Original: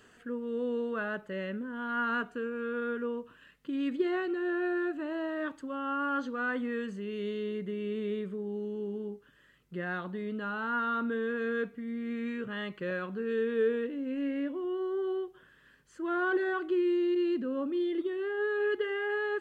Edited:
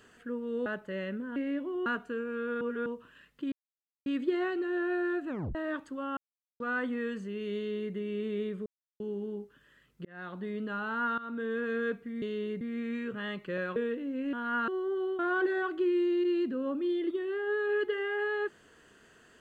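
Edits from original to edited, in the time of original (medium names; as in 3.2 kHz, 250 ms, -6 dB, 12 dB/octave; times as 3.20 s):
0.66–1.07 s: delete
1.77–2.12 s: swap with 14.25–14.75 s
2.87–3.12 s: reverse
3.78 s: insert silence 0.54 s
5.01 s: tape stop 0.26 s
5.89–6.32 s: mute
7.27–7.66 s: copy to 11.94 s
8.38–8.72 s: mute
9.77–10.17 s: fade in
10.90–11.38 s: fade in equal-power, from -16.5 dB
13.09–13.68 s: delete
15.26–16.10 s: delete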